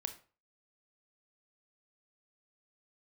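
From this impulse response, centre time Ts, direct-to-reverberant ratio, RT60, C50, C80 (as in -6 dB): 8 ms, 8.0 dB, 0.40 s, 12.5 dB, 17.5 dB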